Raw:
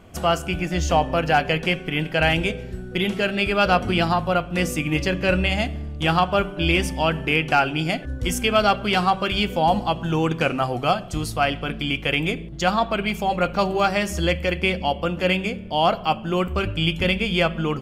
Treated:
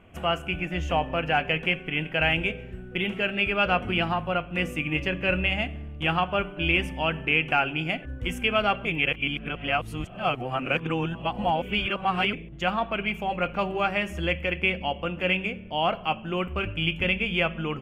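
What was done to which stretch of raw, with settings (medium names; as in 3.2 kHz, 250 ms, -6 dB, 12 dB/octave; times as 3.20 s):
8.85–12.33 s: reverse
whole clip: resonant high shelf 3.5 kHz -8.5 dB, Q 3; trim -6.5 dB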